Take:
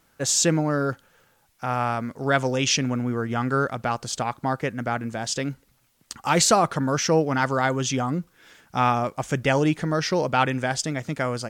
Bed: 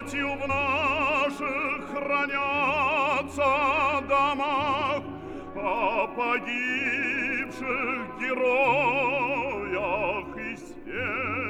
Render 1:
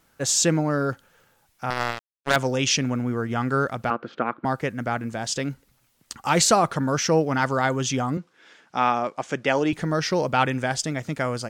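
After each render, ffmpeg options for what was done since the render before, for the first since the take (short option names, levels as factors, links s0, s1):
-filter_complex "[0:a]asettb=1/sr,asplit=3[s0][s1][s2];[s0]atrim=end=1.704[s3];[s1]atrim=start=1.7:end=2.36,asetpts=PTS-STARTPTS,afade=t=in:d=0.004:c=qsin,afade=t=out:st=0.656:d=0.004:c=qsin,acrusher=bits=2:mix=0:aa=0.5[s4];[s2]atrim=start=2.356[s5];[s3][s4]acrossfade=d=0.004:c1=hsin:c2=qsin[s6];[s6][s5]acrossfade=d=0.004:c1=qsin:c2=hsin,asettb=1/sr,asplit=3[s7][s8][s9];[s7]atrim=end=3.904[s10];[s8]atrim=start=3.9:end=4.45,asetpts=PTS-STARTPTS,afade=t=in:d=0.004:c=qsin,afade=t=out:st=0.546:d=0.004:c=qsin,highpass=210,equalizer=f=230:t=q:w=4:g=6,equalizer=f=330:t=q:w=4:g=8,equalizer=f=490:t=q:w=4:g=5,equalizer=f=830:t=q:w=4:g=-5,equalizer=f=1400:t=q:w=4:g=9,lowpass=f=2500:w=0.5412,lowpass=f=2500:w=1.3066[s11];[s9]atrim=start=4.446[s12];[s10][s11]acrossfade=d=0.004:c1=hsin:c2=qsin[s13];[s13][s12]acrossfade=d=0.004:c1=qsin:c2=hsin,asettb=1/sr,asplit=3[s14][s15][s16];[s14]atrim=end=8.174[s17];[s15]atrim=start=8.17:end=9.73,asetpts=PTS-STARTPTS,afade=t=in:d=0.004:c=qsin,afade=t=out:st=1.556:d=0.004:c=qsin,highpass=240,lowpass=5800[s18];[s16]atrim=start=9.726[s19];[s17][s18]acrossfade=d=0.004:c1=hsin:c2=qsin[s20];[s20][s19]acrossfade=d=0.004:c1=qsin:c2=hsin"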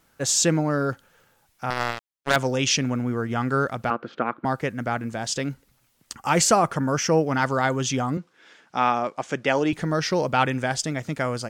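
-filter_complex "[0:a]asettb=1/sr,asplit=3[s0][s1][s2];[s0]atrim=end=6.124[s3];[s1]atrim=start=6.12:end=7.27,asetpts=PTS-STARTPTS,afade=t=in:d=0.004:c=qsin,afade=t=out:st=1.146:d=0.004:c=qsin,equalizer=f=3900:w=5.1:g=-10.5[s4];[s2]atrim=start=7.266[s5];[s3][s4]acrossfade=d=0.004:c1=hsin:c2=qsin[s6];[s6][s5]acrossfade=d=0.004:c1=qsin:c2=hsin"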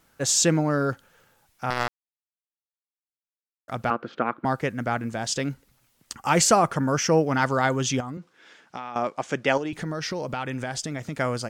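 -filter_complex "[0:a]asettb=1/sr,asplit=3[s0][s1][s2];[s0]atrim=end=8.004[s3];[s1]atrim=start=8:end=8.96,asetpts=PTS-STARTPTS,afade=t=in:d=0.004:c=qsin,afade=t=out:st=0.956:d=0.004:c=qsin,acompressor=threshold=0.0316:ratio=12:attack=3.2:release=140:knee=1:detection=peak[s4];[s2]atrim=start=8.956[s5];[s3][s4]acrossfade=d=0.004:c1=hsin:c2=qsin[s6];[s6][s5]acrossfade=d=0.004:c1=qsin:c2=hsin,asettb=1/sr,asplit=3[s7][s8][s9];[s7]atrim=end=9.574[s10];[s8]atrim=start=9.57:end=11.17,asetpts=PTS-STARTPTS,afade=t=in:d=0.004:c=qsin,afade=t=out:st=1.596:d=0.004:c=qsin,acompressor=threshold=0.0501:ratio=6:attack=3.2:release=140:knee=1:detection=peak[s11];[s9]atrim=start=11.166[s12];[s10][s11]acrossfade=d=0.004:c1=hsin:c2=qsin[s13];[s13][s12]acrossfade=d=0.004:c1=qsin:c2=hsin,asplit=3[s14][s15][s16];[s14]atrim=end=1.88,asetpts=PTS-STARTPTS,afade=t=out:st=1.876:d=0.004:c=hsin[s17];[s15]atrim=start=1.88:end=3.68,asetpts=PTS-STARTPTS,volume=0[s18];[s16]atrim=start=3.68,asetpts=PTS-STARTPTS,afade=t=in:d=0.004:c=hsin[s19];[s17][s18][s19]concat=n=3:v=0:a=1"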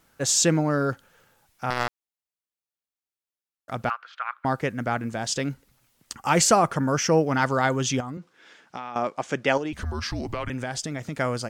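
-filter_complex "[0:a]asettb=1/sr,asplit=3[s0][s1][s2];[s0]atrim=end=3.894[s3];[s1]atrim=start=3.89:end=4.45,asetpts=PTS-STARTPTS,afade=t=in:d=0.004:c=qsin,afade=t=out:st=0.556:d=0.004:c=qsin,highpass=f=1100:w=0.5412,highpass=f=1100:w=1.3066[s4];[s2]atrim=start=4.446[s5];[s3][s4]acrossfade=d=0.004:c1=hsin:c2=qsin[s6];[s6][s5]acrossfade=d=0.004:c1=qsin:c2=hsin,asettb=1/sr,asplit=3[s7][s8][s9];[s7]atrim=end=9.734[s10];[s8]atrim=start=9.73:end=10.5,asetpts=PTS-STARTPTS,afade=t=in:d=0.004:c=qsin,afade=t=out:st=0.766:d=0.004:c=qsin,afreqshift=-240[s11];[s9]atrim=start=10.496[s12];[s10][s11]acrossfade=d=0.004:c1=hsin:c2=qsin[s13];[s13][s12]acrossfade=d=0.004:c1=qsin:c2=hsin"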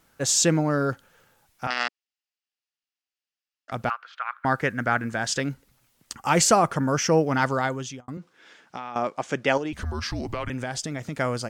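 -filter_complex "[0:a]asettb=1/sr,asplit=3[s0][s1][s2];[s0]atrim=end=1.674[s3];[s1]atrim=start=1.67:end=3.72,asetpts=PTS-STARTPTS,afade=t=in:d=0.004:c=qsin,afade=t=out:st=2.046:d=0.004:c=qsin,highpass=f=250:w=0.5412,highpass=f=250:w=1.3066,equalizer=f=360:t=q:w=4:g=-10,equalizer=f=540:t=q:w=4:g=-9,equalizer=f=980:t=q:w=4:g=-7,equalizer=f=1800:t=q:w=4:g=4,equalizer=f=2800:t=q:w=4:g=8,equalizer=f=4900:t=q:w=4:g=6,lowpass=f=7100:w=0.5412,lowpass=f=7100:w=1.3066[s4];[s2]atrim=start=3.716[s5];[s3][s4]acrossfade=d=0.004:c1=hsin:c2=qsin[s6];[s6][s5]acrossfade=d=0.004:c1=qsin:c2=hsin,asettb=1/sr,asplit=3[s7][s8][s9];[s7]atrim=end=4.344[s10];[s8]atrim=start=4.34:end=5.4,asetpts=PTS-STARTPTS,afade=t=in:d=0.004:c=qsin,afade=t=out:st=1.056:d=0.004:c=qsin,equalizer=f=1600:w=1.9:g=8.5[s11];[s9]atrim=start=5.396[s12];[s10][s11]acrossfade=d=0.004:c1=hsin:c2=qsin[s13];[s13][s12]acrossfade=d=0.004:c1=qsin:c2=hsin,asplit=2[s14][s15];[s14]atrim=end=8.08,asetpts=PTS-STARTPTS,afade=t=out:st=7.46:d=0.62[s16];[s15]atrim=start=8.08,asetpts=PTS-STARTPTS,afade=t=in:d=0.004:c=hsin[s17];[s16][s17]concat=n=2:v=0:a=1"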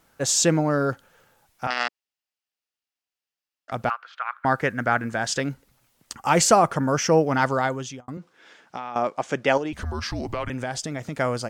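-af "equalizer=f=690:t=o:w=1.5:g=3"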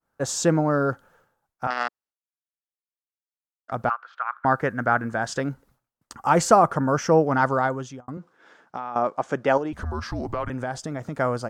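-af "agate=range=0.0224:threshold=0.00251:ratio=3:detection=peak,highshelf=f=1800:t=q:w=1.5:g=-7"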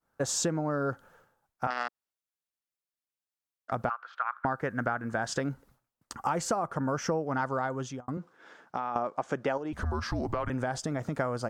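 -af "acompressor=threshold=0.0501:ratio=12"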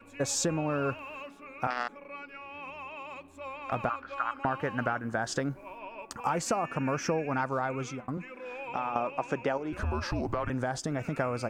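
-filter_complex "[1:a]volume=0.126[s0];[0:a][s0]amix=inputs=2:normalize=0"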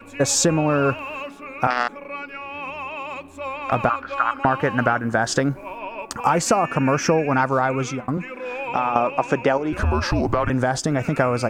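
-af "volume=3.55"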